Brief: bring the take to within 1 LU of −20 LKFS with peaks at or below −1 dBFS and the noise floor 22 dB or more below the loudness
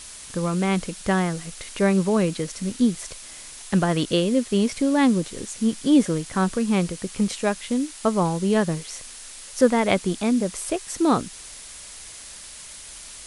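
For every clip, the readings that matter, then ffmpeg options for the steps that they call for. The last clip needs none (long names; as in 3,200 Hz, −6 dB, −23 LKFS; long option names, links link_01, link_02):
background noise floor −41 dBFS; target noise floor −45 dBFS; integrated loudness −23.0 LKFS; sample peak −4.5 dBFS; target loudness −20.0 LKFS
→ -af "afftdn=noise_reduction=6:noise_floor=-41"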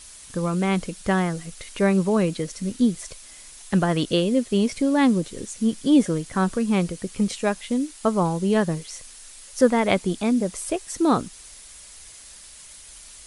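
background noise floor −45 dBFS; integrated loudness −23.0 LKFS; sample peak −4.5 dBFS; target loudness −20.0 LKFS
→ -af "volume=3dB"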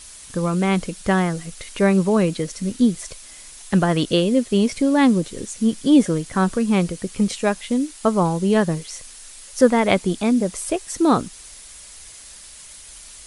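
integrated loudness −20.0 LKFS; sample peak −1.5 dBFS; background noise floor −42 dBFS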